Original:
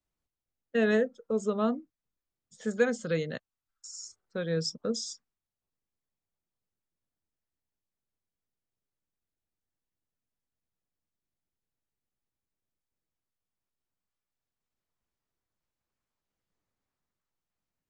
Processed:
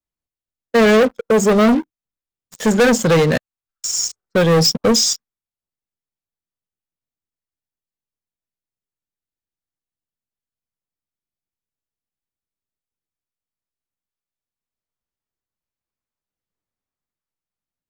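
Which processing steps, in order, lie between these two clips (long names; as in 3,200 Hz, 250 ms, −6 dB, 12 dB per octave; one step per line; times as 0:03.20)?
leveller curve on the samples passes 5
level +5 dB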